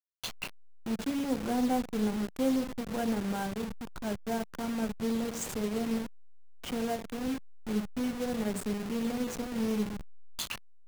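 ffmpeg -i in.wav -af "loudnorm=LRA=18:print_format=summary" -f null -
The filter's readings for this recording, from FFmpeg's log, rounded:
Input Integrated:    -33.6 LUFS
Input True Peak:     -17.9 dBTP
Input LRA:             2.8 LU
Input Threshold:     -43.8 LUFS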